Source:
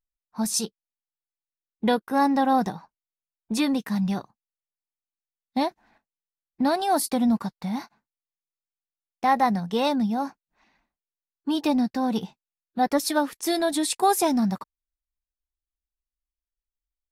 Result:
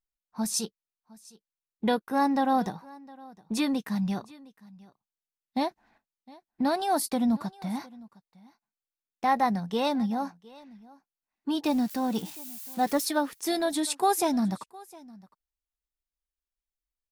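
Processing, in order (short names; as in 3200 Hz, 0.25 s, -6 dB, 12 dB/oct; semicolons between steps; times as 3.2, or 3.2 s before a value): 11.66–13.05 switching spikes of -29.5 dBFS; echo 0.71 s -22.5 dB; gain -3.5 dB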